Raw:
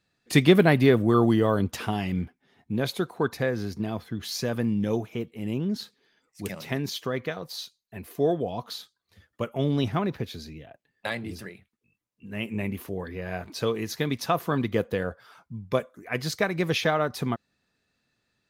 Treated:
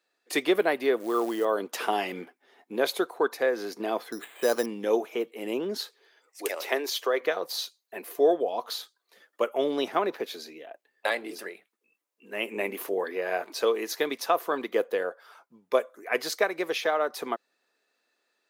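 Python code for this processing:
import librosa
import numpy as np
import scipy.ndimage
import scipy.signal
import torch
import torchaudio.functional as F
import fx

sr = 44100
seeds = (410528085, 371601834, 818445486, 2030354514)

y = fx.quant_companded(x, sr, bits=6, at=(1.0, 1.45))
y = fx.resample_bad(y, sr, factor=8, down='filtered', up='hold', at=(4.12, 4.66))
y = fx.highpass(y, sr, hz=320.0, slope=24, at=(5.77, 7.21))
y = scipy.signal.sosfilt(scipy.signal.butter(4, 370.0, 'highpass', fs=sr, output='sos'), y)
y = fx.peak_eq(y, sr, hz=3900.0, db=-4.0, octaves=2.7)
y = fx.rider(y, sr, range_db=5, speed_s=0.5)
y = y * 10.0 ** (3.0 / 20.0)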